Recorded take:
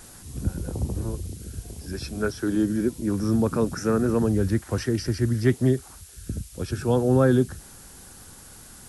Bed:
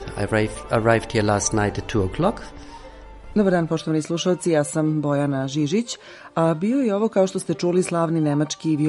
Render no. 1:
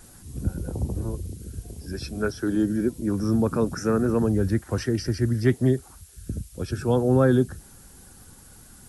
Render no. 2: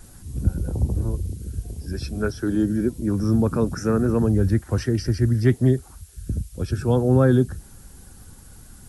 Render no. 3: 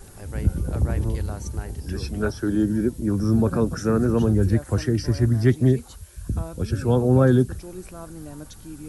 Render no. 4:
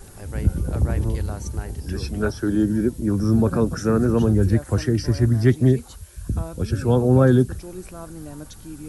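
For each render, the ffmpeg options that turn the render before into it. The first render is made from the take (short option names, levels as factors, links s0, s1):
-af "afftdn=nr=6:nf=-47"
-af "lowshelf=f=130:g=8.5"
-filter_complex "[1:a]volume=0.119[s0];[0:a][s0]amix=inputs=2:normalize=0"
-af "volume=1.19"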